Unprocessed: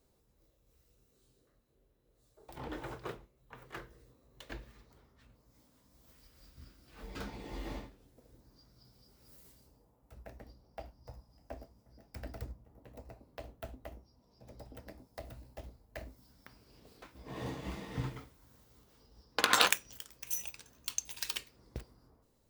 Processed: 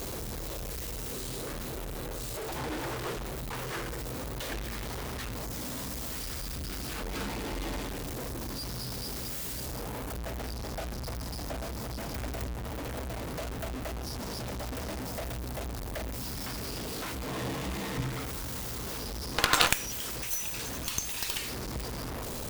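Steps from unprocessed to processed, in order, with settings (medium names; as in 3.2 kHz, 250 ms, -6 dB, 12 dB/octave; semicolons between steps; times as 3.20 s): jump at every zero crossing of -27.5 dBFS; Chebyshev shaper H 3 -21 dB, 5 -22 dB, 7 -21 dB, 8 -19 dB, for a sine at -4 dBFS; trim +2.5 dB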